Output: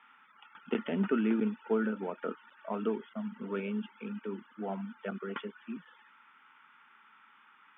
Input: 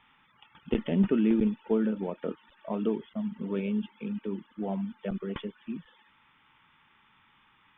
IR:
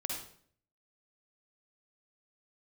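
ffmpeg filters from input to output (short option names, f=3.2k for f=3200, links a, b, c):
-af "highpass=f=230:w=0.5412,highpass=f=230:w=1.3066,equalizer=f=320:t=q:w=4:g=-7,equalizer=f=550:t=q:w=4:g=-5,equalizer=f=1.4k:t=q:w=4:g=10,lowpass=f=3.1k:w=0.5412,lowpass=f=3.1k:w=1.3066"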